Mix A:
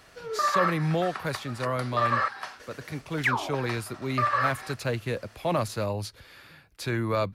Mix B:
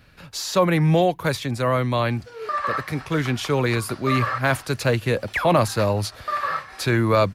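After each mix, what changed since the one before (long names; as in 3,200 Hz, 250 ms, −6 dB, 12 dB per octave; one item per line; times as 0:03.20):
speech +8.5 dB
background: entry +2.10 s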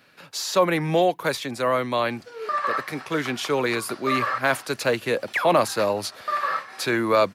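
speech: add high-pass filter 270 Hz 12 dB per octave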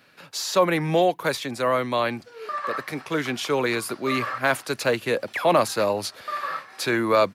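background −4.5 dB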